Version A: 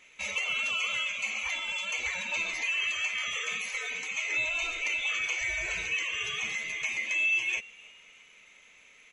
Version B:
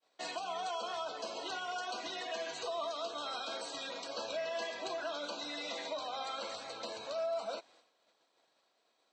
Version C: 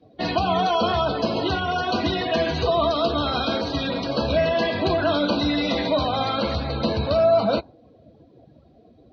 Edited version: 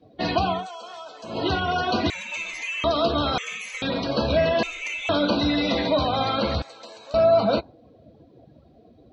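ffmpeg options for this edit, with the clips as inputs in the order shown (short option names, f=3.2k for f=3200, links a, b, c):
-filter_complex "[1:a]asplit=2[a][b];[0:a]asplit=3[c][d][e];[2:a]asplit=6[f][g][h][i][j][k];[f]atrim=end=0.68[l];[a]atrim=start=0.44:end=1.46[m];[g]atrim=start=1.22:end=2.102[n];[c]atrim=start=2.098:end=2.842[o];[h]atrim=start=2.838:end=3.382[p];[d]atrim=start=3.378:end=3.822[q];[i]atrim=start=3.818:end=4.632[r];[e]atrim=start=4.628:end=5.092[s];[j]atrim=start=5.088:end=6.622[t];[b]atrim=start=6.618:end=7.142[u];[k]atrim=start=7.138[v];[l][m]acrossfade=d=0.24:c1=tri:c2=tri[w];[w][n]acrossfade=d=0.24:c1=tri:c2=tri[x];[x][o]acrossfade=d=0.004:c1=hsin:c2=hsin[y];[y][p]acrossfade=d=0.004:c1=hsin:c2=hsin[z];[z][q]acrossfade=d=0.004:c1=hsin:c2=hsin[aa];[aa][r]acrossfade=d=0.004:c1=hsin:c2=hsin[ab];[ab][s]acrossfade=d=0.004:c1=hsin:c2=hsin[ac];[ac][t]acrossfade=d=0.004:c1=hsin:c2=hsin[ad];[ad][u]acrossfade=d=0.004:c1=hsin:c2=hsin[ae];[ae][v]acrossfade=d=0.004:c1=hsin:c2=hsin"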